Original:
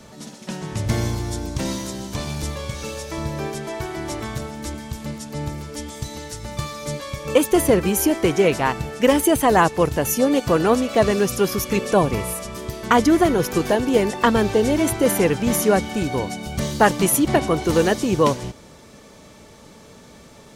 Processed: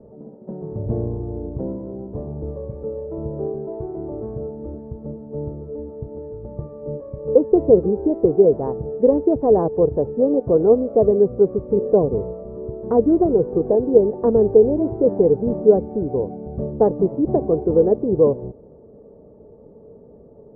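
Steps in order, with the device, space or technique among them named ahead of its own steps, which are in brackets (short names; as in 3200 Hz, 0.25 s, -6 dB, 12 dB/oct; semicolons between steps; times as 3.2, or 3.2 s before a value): under water (LPF 690 Hz 24 dB/oct; bell 440 Hz +10.5 dB 0.46 oct); gain -2.5 dB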